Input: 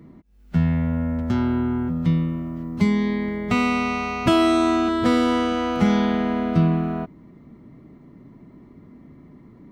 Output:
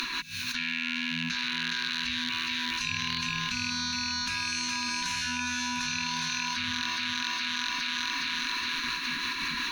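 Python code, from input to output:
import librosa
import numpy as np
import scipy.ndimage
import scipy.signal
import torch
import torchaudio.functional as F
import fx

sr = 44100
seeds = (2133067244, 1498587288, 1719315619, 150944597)

y = fx.rattle_buzz(x, sr, strikes_db=-23.0, level_db=-25.0)
y = fx.rider(y, sr, range_db=10, speed_s=0.5)
y = scipy.signal.sosfilt(scipy.signal.cheby1(2, 1.0, [100.0, 2800.0], 'bandstop', fs=sr, output='sos'), y)
y = fx.band_shelf(y, sr, hz=2300.0, db=13.5, octaves=2.9)
y = fx.hum_notches(y, sr, base_hz=50, count=4)
y = fx.spec_gate(y, sr, threshold_db=-15, keep='weak')
y = fx.ripple_eq(y, sr, per_octave=1.5, db=11)
y = fx.echo_thinned(y, sr, ms=415, feedback_pct=49, hz=210.0, wet_db=-6.5)
y = y * (1.0 - 0.43 / 2.0 + 0.43 / 2.0 * np.cos(2.0 * np.pi * 5.5 * (np.arange(len(y)) / sr)))
y = fx.env_flatten(y, sr, amount_pct=100)
y = y * 10.0 ** (-6.0 / 20.0)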